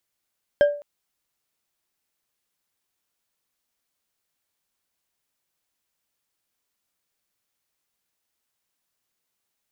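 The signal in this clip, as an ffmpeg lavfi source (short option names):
-f lavfi -i "aevalsrc='0.316*pow(10,-3*t/0.42)*sin(2*PI*582*t)+0.0891*pow(10,-3*t/0.207)*sin(2*PI*1604.6*t)+0.0251*pow(10,-3*t/0.129)*sin(2*PI*3145.1*t)+0.00708*pow(10,-3*t/0.091)*sin(2*PI*5199*t)+0.002*pow(10,-3*t/0.068)*sin(2*PI*7763.9*t)':d=0.21:s=44100"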